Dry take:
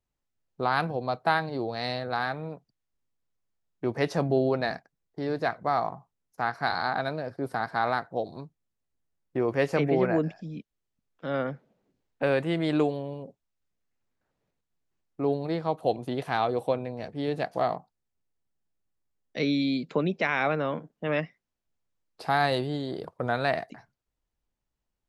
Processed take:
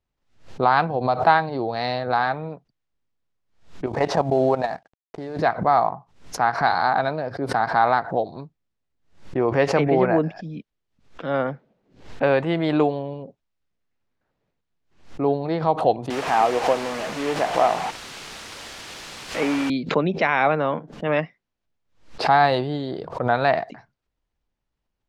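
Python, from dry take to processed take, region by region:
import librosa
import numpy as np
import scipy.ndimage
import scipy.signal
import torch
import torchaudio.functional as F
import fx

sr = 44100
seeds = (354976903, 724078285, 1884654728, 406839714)

y = fx.chain(x, sr, fx.cvsd(bps=64000),
    fx.peak_eq(hz=760.0, db=5.0, octaves=1.1),
    fx.level_steps(step_db=12), at=(3.86, 5.39))
y = fx.chain(y, sr, fx.delta_mod(bps=16000, step_db=-28.0),
    fx.highpass(hz=230.0, slope=12),
    fx.quant_dither(seeds[0], bits=6, dither='triangular'), at=(16.1, 19.7))
y = scipy.signal.sosfilt(scipy.signal.butter(2, 4800.0, 'lowpass', fs=sr, output='sos'), y)
y = fx.dynamic_eq(y, sr, hz=860.0, q=1.5, threshold_db=-40.0, ratio=4.0, max_db=6)
y = fx.pre_swell(y, sr, db_per_s=130.0)
y = F.gain(torch.from_numpy(y), 4.0).numpy()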